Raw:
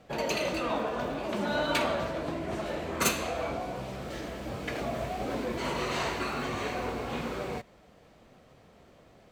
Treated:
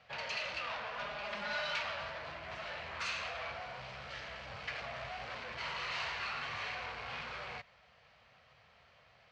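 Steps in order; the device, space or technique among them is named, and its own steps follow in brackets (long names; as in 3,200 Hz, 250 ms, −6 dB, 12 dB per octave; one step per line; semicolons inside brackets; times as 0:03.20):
scooped metal amplifier (tube saturation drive 34 dB, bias 0.4; loudspeaker in its box 100–4,300 Hz, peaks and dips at 180 Hz −4 dB, 380 Hz −3 dB, 3,600 Hz −6 dB; guitar amp tone stack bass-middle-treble 10-0-10)
0:00.99–0:01.76: comb filter 4.9 ms, depth 75%
level +7.5 dB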